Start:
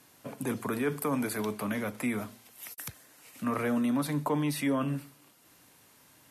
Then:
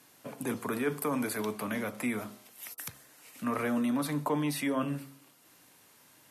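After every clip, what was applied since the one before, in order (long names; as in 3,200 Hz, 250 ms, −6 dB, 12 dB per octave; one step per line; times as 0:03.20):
low-shelf EQ 80 Hz −12 dB
hum removal 68.35 Hz, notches 20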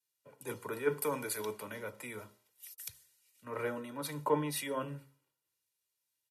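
comb filter 2.1 ms, depth 62%
multiband upward and downward expander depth 100%
level −7 dB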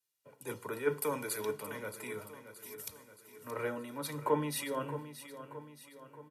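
repeating echo 624 ms, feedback 52%, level −12 dB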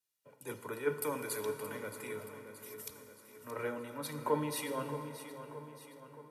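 dense smooth reverb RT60 4.7 s, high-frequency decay 0.5×, DRR 8.5 dB
level −2 dB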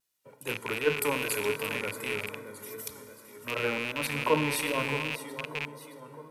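loose part that buzzes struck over −50 dBFS, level −27 dBFS
pitch vibrato 2.6 Hz 57 cents
level +6.5 dB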